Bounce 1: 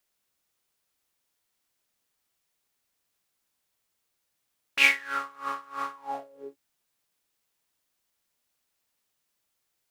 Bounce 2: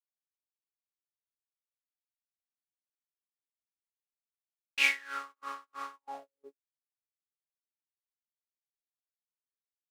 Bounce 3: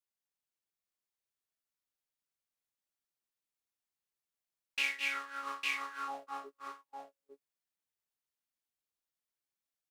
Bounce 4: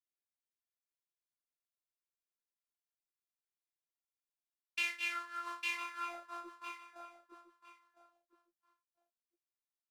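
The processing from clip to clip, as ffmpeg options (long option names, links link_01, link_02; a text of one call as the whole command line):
ffmpeg -i in.wav -af "highpass=180,agate=range=-33dB:threshold=-40dB:ratio=16:detection=peak,equalizer=frequency=5900:width_type=o:width=2.8:gain=5,volume=-9dB" out.wav
ffmpeg -i in.wav -filter_complex "[0:a]asplit=2[link_01][link_02];[link_02]aecho=0:1:209|227|854:0.266|0.447|0.562[link_03];[link_01][link_03]amix=inputs=2:normalize=0,acompressor=threshold=-32dB:ratio=3" out.wav
ffmpeg -i in.wav -af "afftfilt=real='hypot(re,im)*cos(PI*b)':imag='0':win_size=512:overlap=0.75,agate=range=-9dB:threshold=-58dB:ratio=16:detection=peak,aecho=1:1:1008|2016:0.224|0.0358,volume=1dB" out.wav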